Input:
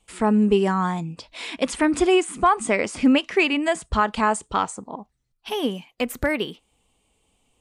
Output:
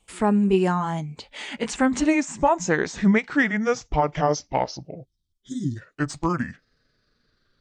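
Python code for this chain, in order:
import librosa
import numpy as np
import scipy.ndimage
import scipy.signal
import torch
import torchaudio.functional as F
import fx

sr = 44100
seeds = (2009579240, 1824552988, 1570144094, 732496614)

y = fx.pitch_glide(x, sr, semitones=-11.5, runs='starting unshifted')
y = fx.spec_box(y, sr, start_s=5.05, length_s=0.71, low_hz=390.0, high_hz=3000.0, gain_db=-29)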